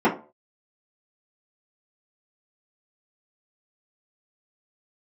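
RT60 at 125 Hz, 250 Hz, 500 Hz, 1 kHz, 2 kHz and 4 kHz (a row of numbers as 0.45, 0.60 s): 0.35, 0.35, 0.40, 0.35, 0.25, 0.20 s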